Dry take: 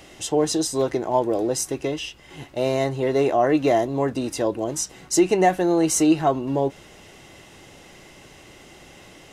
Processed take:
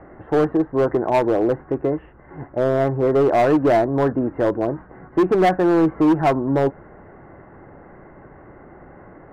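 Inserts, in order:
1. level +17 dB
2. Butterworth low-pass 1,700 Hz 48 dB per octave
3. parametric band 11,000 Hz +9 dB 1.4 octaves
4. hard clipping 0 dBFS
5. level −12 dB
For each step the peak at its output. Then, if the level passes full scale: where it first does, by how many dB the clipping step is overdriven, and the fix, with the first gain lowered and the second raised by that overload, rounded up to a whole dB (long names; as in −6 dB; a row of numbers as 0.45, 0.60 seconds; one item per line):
+9.0, +9.0, +9.0, 0.0, −12.0 dBFS
step 1, 9.0 dB
step 1 +8 dB, step 5 −3 dB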